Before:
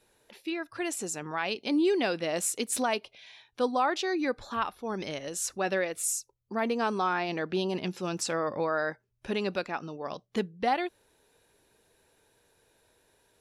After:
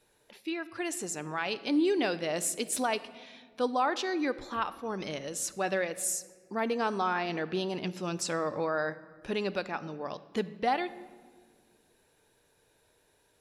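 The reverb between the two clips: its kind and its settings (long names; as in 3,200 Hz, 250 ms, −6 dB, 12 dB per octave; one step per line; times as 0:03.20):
rectangular room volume 2,000 cubic metres, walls mixed, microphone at 0.4 metres
level −1.5 dB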